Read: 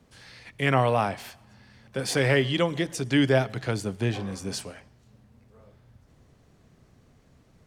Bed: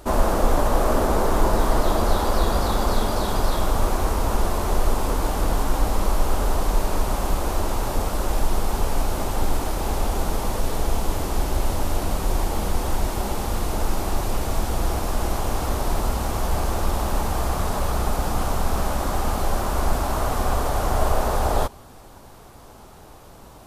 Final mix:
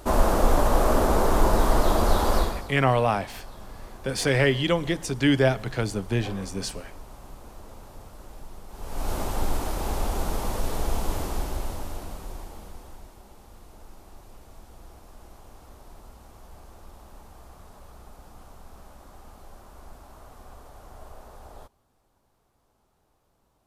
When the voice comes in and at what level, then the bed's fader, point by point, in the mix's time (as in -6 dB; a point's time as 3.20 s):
2.10 s, +1.0 dB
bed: 2.38 s -1 dB
2.75 s -21.5 dB
8.68 s -21.5 dB
9.10 s -4 dB
11.19 s -4 dB
13.21 s -24.5 dB